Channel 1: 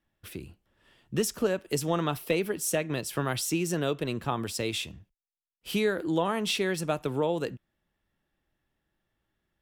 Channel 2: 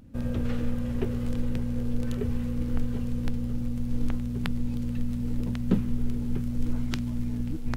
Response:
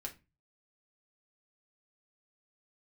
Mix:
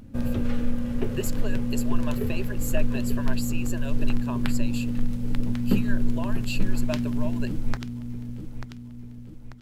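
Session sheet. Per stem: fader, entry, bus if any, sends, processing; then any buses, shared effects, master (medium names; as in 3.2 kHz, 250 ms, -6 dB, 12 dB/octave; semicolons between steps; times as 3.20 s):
-6.5 dB, 0.00 s, no send, no echo send, harmonic-percussive split harmonic -15 dB; rippled EQ curve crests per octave 1.4, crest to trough 17 dB
+3.0 dB, 0.00 s, send -5 dB, echo send -10 dB, auto duck -7 dB, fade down 0.55 s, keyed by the first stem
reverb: on, RT60 0.25 s, pre-delay 4 ms
echo: feedback delay 890 ms, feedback 47%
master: none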